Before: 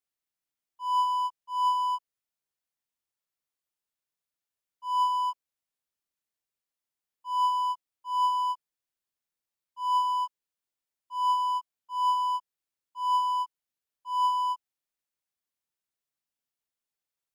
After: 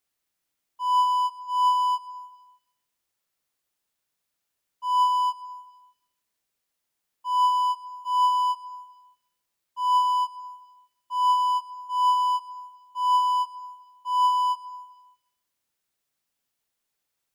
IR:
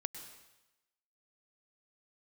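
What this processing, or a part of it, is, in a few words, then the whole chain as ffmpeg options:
compressed reverb return: -filter_complex "[0:a]asplit=2[link_01][link_02];[1:a]atrim=start_sample=2205[link_03];[link_02][link_03]afir=irnorm=-1:irlink=0,acompressor=threshold=-41dB:ratio=6,volume=1.5dB[link_04];[link_01][link_04]amix=inputs=2:normalize=0,volume=3dB"

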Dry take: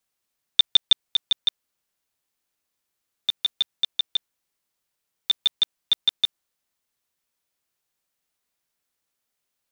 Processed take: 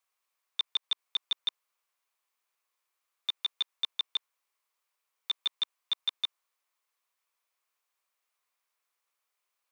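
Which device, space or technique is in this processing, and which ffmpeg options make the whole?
laptop speaker: -af "highpass=frequency=400:width=0.5412,highpass=frequency=400:width=1.3066,equalizer=frequency=1100:width_type=o:width=0.57:gain=10,equalizer=frequency=2300:width_type=o:width=0.52:gain=5.5,alimiter=limit=-15.5dB:level=0:latency=1:release=69,volume=-4.5dB"

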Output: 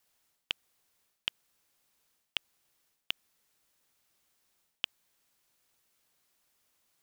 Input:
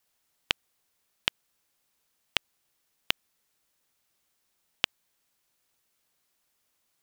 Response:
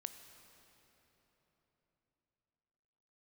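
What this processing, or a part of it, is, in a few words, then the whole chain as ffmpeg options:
compression on the reversed sound: -af "areverse,acompressor=threshold=-31dB:ratio=12,areverse,volume=1dB"

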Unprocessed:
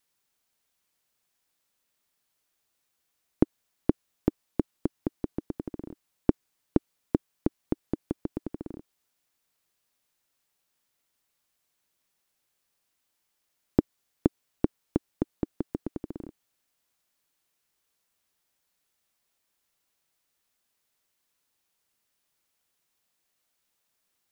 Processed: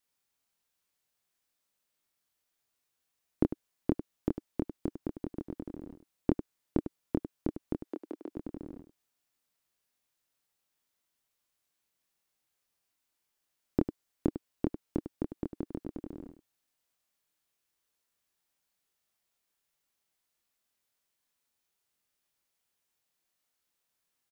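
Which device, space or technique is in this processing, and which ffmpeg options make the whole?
slapback doubling: -filter_complex "[0:a]asettb=1/sr,asplit=3[link_01][link_02][link_03];[link_01]atrim=end=7.834[link_04];[link_02]atrim=start=7.83:end=8.29,asetpts=PTS-STARTPTS,afade=type=in:duration=0.004:curve=qsin,afade=type=out:start_time=0.456:duration=0.004:curve=qsin,highpass=frequency=300:width=0.5412,highpass=frequency=300:width=1.3066[link_05];[link_03]atrim=start=8.286[link_06];[link_04][link_05]acrossfade=duration=0.004:curve1=hsin:curve2=qsin[link_07];[link_07][link_06]acrossfade=duration=0.004:curve1=qsin:curve2=hsin,asplit=3[link_08][link_09][link_10];[link_09]adelay=25,volume=-3.5dB[link_11];[link_10]adelay=100,volume=-10.5dB[link_12];[link_08][link_11][link_12]amix=inputs=3:normalize=0,volume=-6.5dB"

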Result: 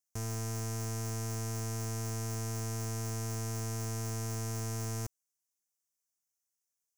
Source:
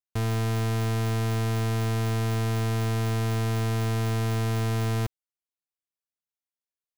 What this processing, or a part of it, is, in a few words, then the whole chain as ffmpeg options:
over-bright horn tweeter: -af "highshelf=frequency=4800:width_type=q:width=3:gain=8.5,alimiter=limit=-24dB:level=0:latency=1:release=18,volume=-1.5dB"

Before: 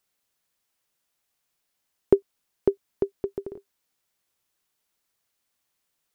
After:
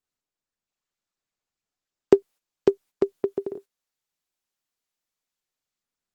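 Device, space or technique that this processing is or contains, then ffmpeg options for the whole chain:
video call: -af "highpass=180,dynaudnorm=framelen=280:gausssize=7:maxgain=7.5dB,agate=range=-17dB:threshold=-43dB:ratio=16:detection=peak" -ar 48000 -c:a libopus -b:a 16k

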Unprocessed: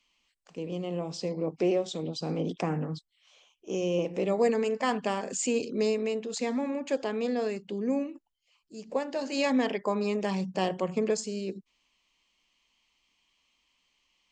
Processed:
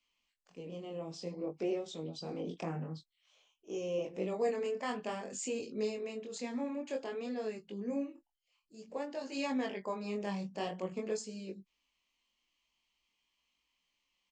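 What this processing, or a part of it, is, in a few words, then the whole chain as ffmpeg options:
double-tracked vocal: -filter_complex "[0:a]asplit=2[link_01][link_02];[link_02]adelay=21,volume=-13dB[link_03];[link_01][link_03]amix=inputs=2:normalize=0,flanger=delay=18.5:depth=6.4:speed=0.53,volume=-6dB"

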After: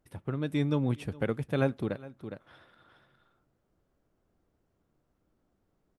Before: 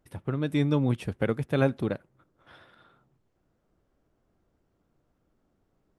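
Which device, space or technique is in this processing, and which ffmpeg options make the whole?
ducked delay: -filter_complex "[0:a]asplit=3[link_01][link_02][link_03];[link_02]adelay=411,volume=-7dB[link_04];[link_03]apad=whole_len=281923[link_05];[link_04][link_05]sidechaincompress=threshold=-44dB:ratio=4:attack=10:release=275[link_06];[link_01][link_06]amix=inputs=2:normalize=0,volume=-3.5dB"

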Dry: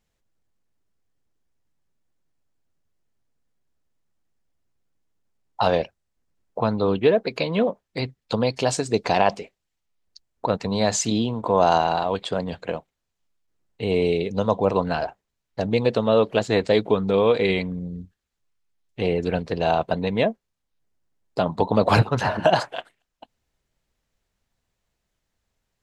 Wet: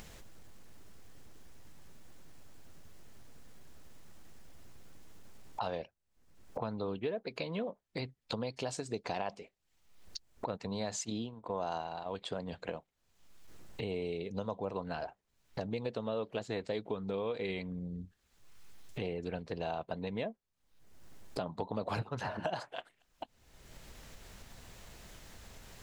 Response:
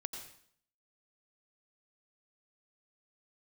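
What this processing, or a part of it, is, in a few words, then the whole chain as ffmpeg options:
upward and downward compression: -filter_complex "[0:a]acompressor=mode=upward:threshold=-31dB:ratio=2.5,acompressor=threshold=-40dB:ratio=3,asplit=3[link_01][link_02][link_03];[link_01]afade=type=out:start_time=11.03:duration=0.02[link_04];[link_02]agate=range=-13dB:threshold=-37dB:ratio=16:detection=peak,afade=type=in:start_time=11.03:duration=0.02,afade=type=out:start_time=12.05:duration=0.02[link_05];[link_03]afade=type=in:start_time=12.05:duration=0.02[link_06];[link_04][link_05][link_06]amix=inputs=3:normalize=0"

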